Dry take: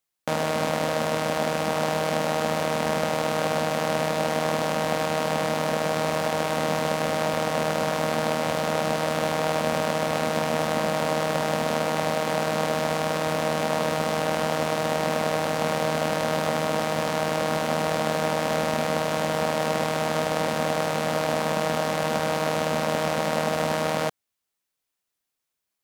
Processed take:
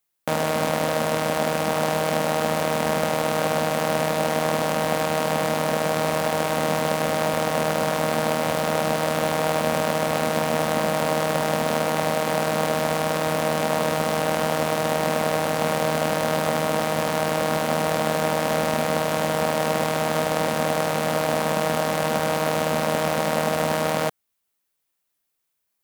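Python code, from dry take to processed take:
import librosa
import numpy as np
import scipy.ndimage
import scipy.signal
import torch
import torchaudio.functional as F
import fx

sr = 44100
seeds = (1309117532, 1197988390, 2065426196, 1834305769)

p1 = fx.sample_hold(x, sr, seeds[0], rate_hz=9200.0, jitter_pct=0)
p2 = x + F.gain(torch.from_numpy(p1), -11.0).numpy()
y = fx.high_shelf(p2, sr, hz=9600.0, db=9.0)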